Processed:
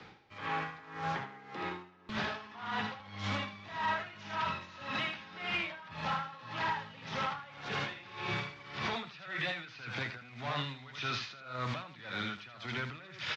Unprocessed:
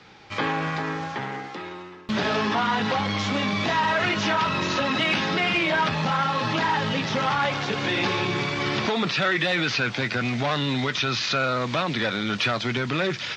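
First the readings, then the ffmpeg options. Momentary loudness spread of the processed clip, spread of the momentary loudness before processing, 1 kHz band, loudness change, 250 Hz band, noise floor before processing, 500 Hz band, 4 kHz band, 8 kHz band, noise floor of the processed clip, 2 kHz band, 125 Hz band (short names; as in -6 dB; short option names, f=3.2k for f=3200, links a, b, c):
6 LU, 7 LU, -12.0 dB, -14.0 dB, -17.5 dB, -38 dBFS, -17.0 dB, -14.0 dB, -17.5 dB, -53 dBFS, -13.0 dB, -13.5 dB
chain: -filter_complex "[0:a]lowpass=f=3k:p=1,acrossover=split=140|700|1500[a][b][c][d];[b]acompressor=threshold=-39dB:ratio=6[e];[a][e][c][d]amix=inputs=4:normalize=0,alimiter=level_in=1.5dB:limit=-24dB:level=0:latency=1:release=77,volume=-1.5dB,aecho=1:1:79:0.501,aeval=exprs='val(0)*pow(10,-18*(0.5-0.5*cos(2*PI*1.8*n/s))/20)':c=same"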